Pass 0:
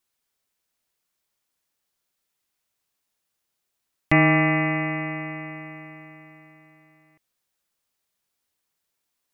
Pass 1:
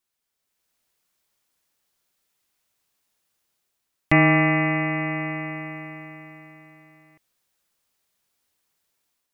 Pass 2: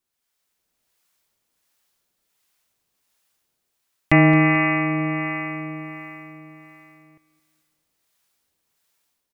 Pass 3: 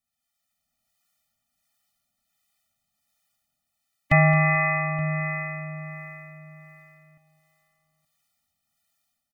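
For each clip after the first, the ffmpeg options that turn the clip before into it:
-af "dynaudnorm=f=350:g=3:m=7.5dB,volume=-3dB"
-filter_complex "[0:a]acrossover=split=650[a][b];[a]aeval=exprs='val(0)*(1-0.5/2+0.5/2*cos(2*PI*1.4*n/s))':c=same[c];[b]aeval=exprs='val(0)*(1-0.5/2-0.5/2*cos(2*PI*1.4*n/s))':c=same[d];[c][d]amix=inputs=2:normalize=0,aecho=1:1:219|438|657|876:0.158|0.0682|0.0293|0.0126,volume=4.5dB"
-filter_complex "[0:a]asplit=2[a][b];[b]adelay=874.6,volume=-17dB,highshelf=f=4k:g=-19.7[c];[a][c]amix=inputs=2:normalize=0,afftfilt=real='re*eq(mod(floor(b*sr/1024/290),2),0)':imag='im*eq(mod(floor(b*sr/1024/290),2),0)':win_size=1024:overlap=0.75,volume=-1dB"

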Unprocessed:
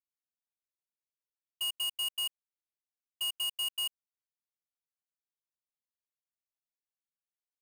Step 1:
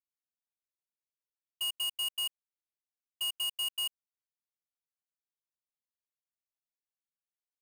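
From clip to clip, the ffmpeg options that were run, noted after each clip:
-af anull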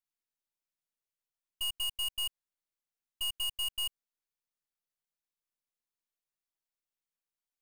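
-af "aeval=exprs='if(lt(val(0),0),0.447*val(0),val(0))':c=same,volume=2dB"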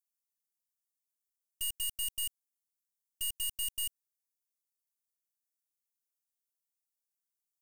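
-filter_complex "[0:a]highshelf=f=3.5k:g=12,acrossover=split=4600[a][b];[a]acrusher=bits=3:dc=4:mix=0:aa=0.000001[c];[c][b]amix=inputs=2:normalize=0,volume=-6.5dB"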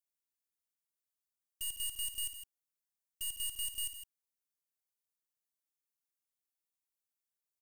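-af "aecho=1:1:58.31|160.3:0.316|0.316,volume=-4dB"

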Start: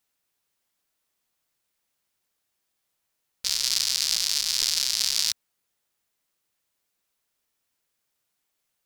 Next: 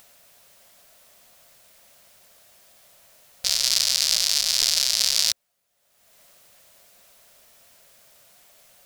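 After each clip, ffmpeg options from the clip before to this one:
-af "acompressor=mode=upward:threshold=-41dB:ratio=2.5,superequalizer=6b=0.501:8b=2.51,volume=3.5dB"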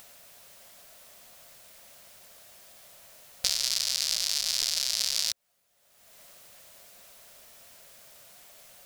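-af "acompressor=threshold=-24dB:ratio=5,volume=2dB"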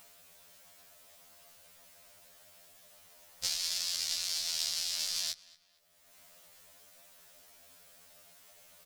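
-filter_complex "[0:a]asplit=2[a][b];[b]adelay=229,lowpass=f=3.3k:p=1,volume=-19dB,asplit=2[c][d];[d]adelay=229,lowpass=f=3.3k:p=1,volume=0.43,asplit=2[e][f];[f]adelay=229,lowpass=f=3.3k:p=1,volume=0.43[g];[a][c][e][g]amix=inputs=4:normalize=0,afftfilt=real='re*2*eq(mod(b,4),0)':imag='im*2*eq(mod(b,4),0)':win_size=2048:overlap=0.75,volume=-3.5dB"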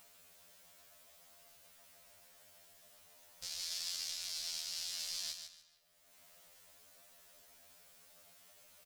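-af "alimiter=limit=-21.5dB:level=0:latency=1:release=296,aecho=1:1:148|296|444:0.447|0.112|0.0279,volume=-4.5dB"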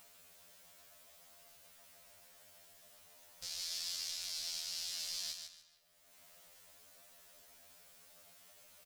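-af "asoftclip=type=tanh:threshold=-28dB,volume=1dB"

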